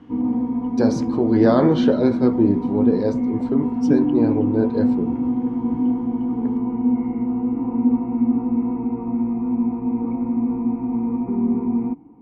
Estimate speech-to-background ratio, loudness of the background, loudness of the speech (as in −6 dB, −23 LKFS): 0.5 dB, −22.0 LKFS, −21.5 LKFS